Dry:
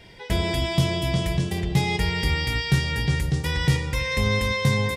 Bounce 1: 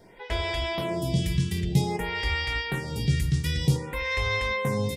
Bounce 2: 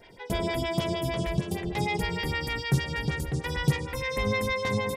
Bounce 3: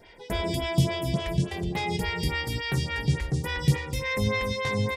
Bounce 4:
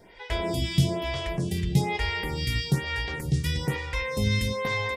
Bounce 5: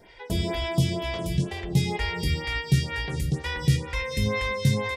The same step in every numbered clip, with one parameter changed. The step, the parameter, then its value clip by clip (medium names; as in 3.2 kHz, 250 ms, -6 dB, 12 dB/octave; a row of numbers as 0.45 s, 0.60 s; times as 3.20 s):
lamp-driven phase shifter, rate: 0.53 Hz, 6.5 Hz, 3.5 Hz, 1.1 Hz, 2.1 Hz